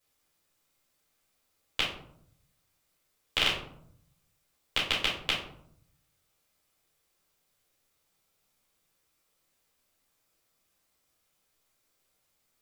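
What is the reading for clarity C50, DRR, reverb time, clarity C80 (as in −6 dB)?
4.0 dB, −7.5 dB, 0.70 s, 9.0 dB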